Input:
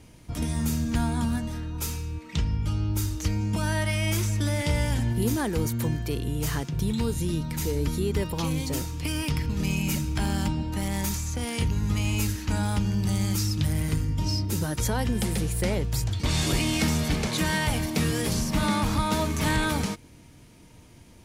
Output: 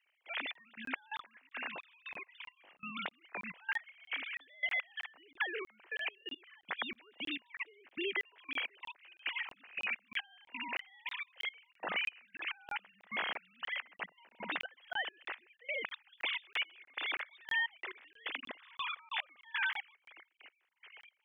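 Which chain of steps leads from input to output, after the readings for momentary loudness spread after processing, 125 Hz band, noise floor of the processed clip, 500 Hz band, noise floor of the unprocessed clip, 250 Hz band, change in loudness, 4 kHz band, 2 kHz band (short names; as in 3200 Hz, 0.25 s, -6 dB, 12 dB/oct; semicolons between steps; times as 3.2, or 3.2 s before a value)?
12 LU, under -40 dB, -76 dBFS, -17.0 dB, -51 dBFS, -26.0 dB, -12.5 dB, -8.0 dB, -2.0 dB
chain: sine-wave speech; HPF 1000 Hz 12 dB/oct; resonant high shelf 1600 Hz +7 dB, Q 1.5; compressor 3:1, threshold -36 dBFS, peak gain reduction 17 dB; step gate "...xxx...xx..x." 175 bpm -24 dB; air absorption 220 m; crackling interface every 0.32 s, samples 1024, zero, from 0.53; gain +2.5 dB; AAC 128 kbps 44100 Hz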